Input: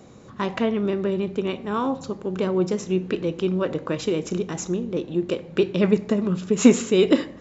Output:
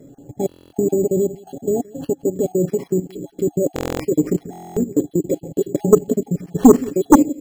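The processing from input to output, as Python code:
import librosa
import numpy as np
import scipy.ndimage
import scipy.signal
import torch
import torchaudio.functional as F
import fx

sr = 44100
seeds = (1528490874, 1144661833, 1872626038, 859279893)

p1 = fx.spec_dropout(x, sr, seeds[0], share_pct=38)
p2 = fx.high_shelf(p1, sr, hz=2800.0, db=-8.0)
p3 = p2 + 0.57 * np.pad(p2, (int(7.2 * sr / 1000.0), 0))[:len(p2)]
p4 = fx.level_steps(p3, sr, step_db=14)
p5 = fx.brickwall_bandstop(p4, sr, low_hz=850.0, high_hz=3900.0)
p6 = fx.small_body(p5, sr, hz=(300.0, 1700.0), ring_ms=45, db=9)
p7 = p6 + fx.echo_single(p6, sr, ms=171, db=-23.5, dry=0)
p8 = np.repeat(p7[::6], 6)[:len(p7)]
p9 = fx.fold_sine(p8, sr, drive_db=15, ceiling_db=7.5)
p10 = fx.buffer_glitch(p9, sr, at_s=(0.47, 3.74, 4.51), block=1024, repeats=10)
y = F.gain(torch.from_numpy(p10), -9.0).numpy()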